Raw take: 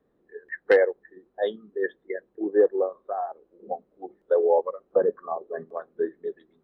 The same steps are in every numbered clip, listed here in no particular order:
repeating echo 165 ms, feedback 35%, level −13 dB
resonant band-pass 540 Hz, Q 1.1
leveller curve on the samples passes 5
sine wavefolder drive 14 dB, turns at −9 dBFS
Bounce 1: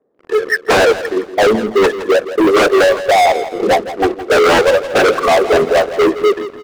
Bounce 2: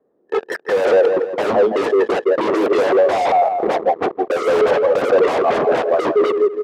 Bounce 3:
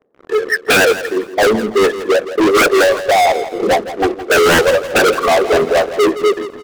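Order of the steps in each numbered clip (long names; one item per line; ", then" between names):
sine wavefolder, then resonant band-pass, then leveller curve on the samples, then repeating echo
leveller curve on the samples, then repeating echo, then sine wavefolder, then resonant band-pass
resonant band-pass, then sine wavefolder, then leveller curve on the samples, then repeating echo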